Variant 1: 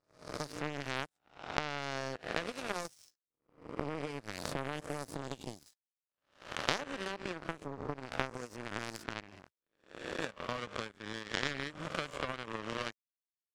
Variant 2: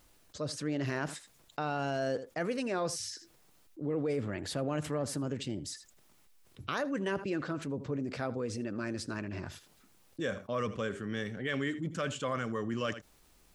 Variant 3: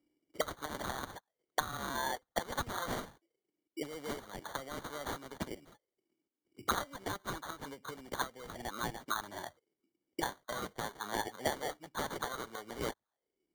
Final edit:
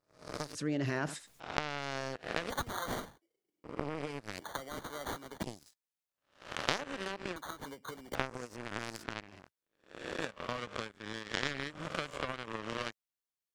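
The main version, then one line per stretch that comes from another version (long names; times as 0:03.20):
1
0:00.55–0:01.40: punch in from 2
0:02.50–0:03.64: punch in from 3
0:04.39–0:05.43: punch in from 3
0:07.36–0:08.15: punch in from 3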